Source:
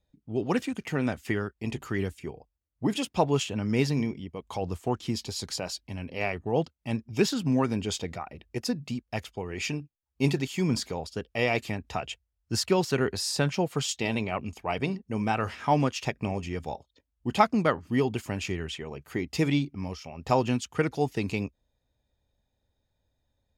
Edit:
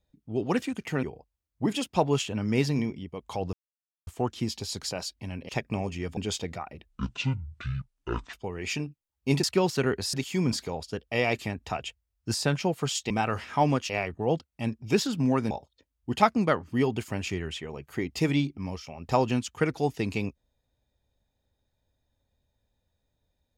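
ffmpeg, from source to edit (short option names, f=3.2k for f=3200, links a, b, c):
-filter_complex "[0:a]asplit=13[a][b][c][d][e][f][g][h][i][j][k][l][m];[a]atrim=end=1.032[n];[b]atrim=start=2.238:end=4.74,asetpts=PTS-STARTPTS,afade=t=out:st=2.498:d=0.004:c=hsin,apad=pad_dur=0.54[o];[c]atrim=start=4.74:end=6.162,asetpts=PTS-STARTPTS,afade=t=in:d=0.004:c=hsin[p];[d]atrim=start=15.998:end=16.682[q];[e]atrim=start=7.768:end=8.494[r];[f]atrim=start=8.49:end=9.27,asetpts=PTS-STARTPTS,asetrate=23814,aresample=44100[s];[g]atrim=start=9.266:end=10.372[t];[h]atrim=start=12.578:end=13.282[u];[i]atrim=start=10.368:end=12.582[v];[j]atrim=start=13.278:end=14.042[w];[k]atrim=start=15.208:end=16.002[x];[l]atrim=start=6.158:end=7.772[y];[m]atrim=start=16.678[z];[o][p]concat=n=2:v=0:a=1[aa];[n][aa]acrossfade=d=0.004:c1=hsin:c2=hsin[ab];[ab][q]acrossfade=d=0.004:c1=hsin:c2=hsin[ac];[ac][r]acrossfade=d=0.004:c1=hsin:c2=hsin[ad];[ad][s]acrossfade=d=0.004:c1=hsin:c2=hsin[ae];[ae][t]acrossfade=d=0.004:c1=hsin:c2=hsin[af];[af][u]acrossfade=d=0.004:c1=hsin:c2=hsin[ag];[ag][v]acrossfade=d=0.004:c1=hsin:c2=hsin[ah];[ah][w]acrossfade=d=0.004:c1=hsin:c2=hsin[ai];[ai][x]acrossfade=d=0.004:c1=hsin:c2=hsin[aj];[aj][y]acrossfade=d=0.004:c1=hsin:c2=hsin[ak];[ak][z]acrossfade=d=0.004:c1=hsin:c2=hsin"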